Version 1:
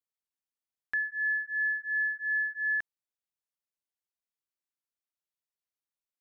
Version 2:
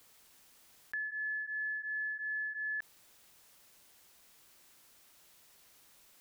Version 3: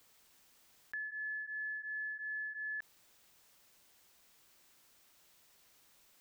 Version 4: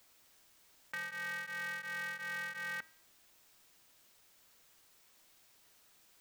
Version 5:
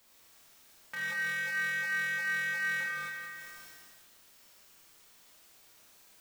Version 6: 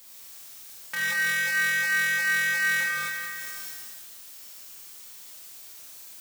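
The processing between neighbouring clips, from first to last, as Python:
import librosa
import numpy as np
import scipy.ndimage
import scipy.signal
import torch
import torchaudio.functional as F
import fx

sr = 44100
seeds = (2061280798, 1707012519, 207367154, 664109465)

y1 = fx.env_flatten(x, sr, amount_pct=70)
y1 = F.gain(torch.from_numpy(y1), -8.5).numpy()
y2 = fx.peak_eq(y1, sr, hz=11000.0, db=-4.5, octaves=0.3)
y2 = F.gain(torch.from_numpy(y2), -3.5).numpy()
y3 = fx.comb_fb(y2, sr, f0_hz=160.0, decay_s=0.59, harmonics='odd', damping=0.0, mix_pct=70)
y3 = y3 * np.sign(np.sin(2.0 * np.pi * 170.0 * np.arange(len(y3)) / sr))
y3 = F.gain(torch.from_numpy(y3), 10.0).numpy()
y4 = fx.rev_schroeder(y3, sr, rt60_s=1.8, comb_ms=27, drr_db=-5.0)
y4 = fx.sustainer(y4, sr, db_per_s=21.0)
y5 = fx.high_shelf(y4, sr, hz=3600.0, db=11.0)
y5 = F.gain(torch.from_numpy(y5), 5.5).numpy()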